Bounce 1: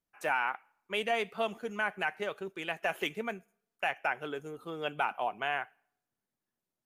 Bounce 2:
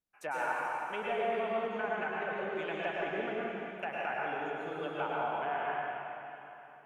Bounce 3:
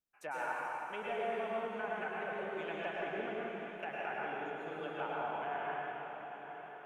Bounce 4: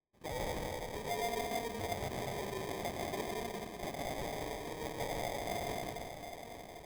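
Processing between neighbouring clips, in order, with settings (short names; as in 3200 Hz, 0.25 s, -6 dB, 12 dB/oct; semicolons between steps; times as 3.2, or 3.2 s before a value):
treble ducked by the level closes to 1500 Hz, closed at -30 dBFS; reverb RT60 3.2 s, pre-delay 93 ms, DRR -5.5 dB; gain -5.5 dB
diffused feedback echo 0.936 s, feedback 56%, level -11.5 dB; gain -4.5 dB
sample-rate reducer 1400 Hz, jitter 0%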